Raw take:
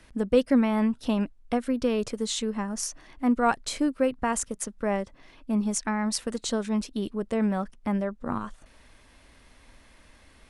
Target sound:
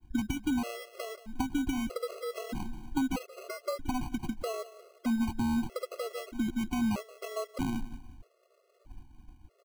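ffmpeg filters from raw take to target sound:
ffmpeg -i in.wav -filter_complex "[0:a]acrossover=split=170|550[link_01][link_02][link_03];[link_01]acompressor=threshold=-44dB:ratio=4[link_04];[link_02]acompressor=threshold=-36dB:ratio=4[link_05];[link_03]acompressor=threshold=-35dB:ratio=4[link_06];[link_04][link_05][link_06]amix=inputs=3:normalize=0,asetrate=48000,aresample=44100,acompressor=threshold=-30dB:ratio=6,aecho=1:1:178|356|534|712:0.158|0.0666|0.028|0.0117,agate=range=-33dB:threshold=-47dB:ratio=3:detection=peak,equalizer=frequency=5200:width_type=o:width=1:gain=-13.5,acrusher=samples=25:mix=1:aa=0.000001,lowshelf=frequency=240:gain=10,afftfilt=real='re*gt(sin(2*PI*0.79*pts/sr)*(1-2*mod(floor(b*sr/1024/360),2)),0)':imag='im*gt(sin(2*PI*0.79*pts/sr)*(1-2*mod(floor(b*sr/1024/360),2)),0)':win_size=1024:overlap=0.75,volume=2dB" out.wav

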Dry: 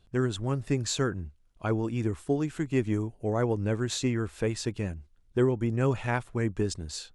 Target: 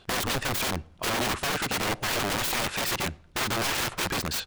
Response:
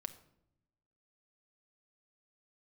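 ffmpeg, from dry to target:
-filter_complex "[0:a]asplit=2[link_01][link_02];[link_02]highpass=frequency=720:poles=1,volume=19dB,asoftclip=type=tanh:threshold=-13dB[link_03];[link_01][link_03]amix=inputs=2:normalize=0,lowpass=frequency=3200:poles=1,volume=-6dB,aeval=exprs='(mod(22.4*val(0)+1,2)-1)/22.4':channel_layout=same,atempo=1.6,asplit=2[link_04][link_05];[1:a]atrim=start_sample=2205,lowpass=6800[link_06];[link_05][link_06]afir=irnorm=-1:irlink=0,volume=-7dB[link_07];[link_04][link_07]amix=inputs=2:normalize=0,volume=3.5dB"

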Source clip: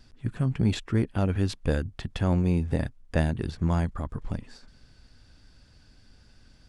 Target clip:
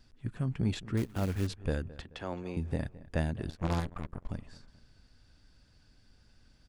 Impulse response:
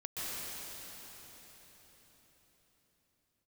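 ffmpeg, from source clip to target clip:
-filter_complex "[0:a]asettb=1/sr,asplit=3[link_01][link_02][link_03];[link_01]atrim=end=2.024[link_04];[link_02]atrim=start=2.02:end=2.57,asetpts=PTS-STARTPTS,afade=type=in:duration=0.004:curve=qsin,afade=type=out:start_time=0.546:duration=0.004:curve=qsin,acrossover=split=300 7100:gain=0.158 1 0.224[link_05][link_06][link_07];[link_05][link_06][link_07]amix=inputs=3:normalize=0[link_08];[link_03]atrim=start=2.566[link_09];[link_04][link_08]acrossfade=duration=0.004:curve1=hsin:curve2=qsin[link_10];[link_10][link_09]acrossfade=duration=0.004:curve1=qsin:curve2=hsin,asplit=2[link_11][link_12];[link_12]adelay=216,lowpass=frequency=2600:poles=1,volume=-18dB,asplit=2[link_13][link_14];[link_14]adelay=216,lowpass=frequency=2600:poles=1,volume=0.42,asplit=2[link_15][link_16];[link_16]adelay=216,lowpass=frequency=2600:poles=1,volume=0.42[link_17];[link_13][link_15][link_17]amix=inputs=3:normalize=0[link_18];[link_11][link_18]amix=inputs=2:normalize=0,asettb=1/sr,asplit=3[link_19][link_20][link_21];[link_19]atrim=end=0.974[link_22];[link_20]atrim=start=0.97:end=1.47,asetpts=PTS-STARTPTS,afade=type=in:duration=0.004:curve=qsin,afade=type=out:start_time=0.496:duration=0.004:curve=qsin,acrusher=bits=4:mode=log:mix=0:aa=0.000001[link_23];[link_21]atrim=start=1.466[link_24];[link_22][link_23]acrossfade=duration=0.004:curve1=hsin:curve2=qsin[link_25];[link_25][link_24]acrossfade=duration=0.004:curve1=qsin:curve2=hsin,asettb=1/sr,asplit=3[link_26][link_27][link_28];[link_26]atrim=end=3.494[link_29];[link_27]atrim=start=3.49:end=4.29,asetpts=PTS-STARTPTS,afade=type=in:duration=0.004:curve=qsin,afade=type=out:start_time=0.796:duration=0.004:curve=qsin,aeval=exprs='0.2*(cos(1*acos(clip(val(0)/0.2,-1,1)))-cos(1*PI/2))+0.0708*(cos(6*acos(clip(val(0)/0.2,-1,1)))-cos(6*PI/2))+0.0158*(cos(7*acos(clip(val(0)/0.2,-1,1)))-cos(7*PI/2))+0.0708*(cos(8*acos(clip(val(0)/0.2,-1,1)))-cos(8*PI/2))':channel_layout=same[link_30];[link_28]atrim=start=4.286[link_31];[link_29][link_30]acrossfade=duration=0.004:curve1=hsin:curve2=qsin[link_32];[link_32][link_31]acrossfade=duration=0.004:curve1=qsin:curve2=hsin,volume=-6.5dB"

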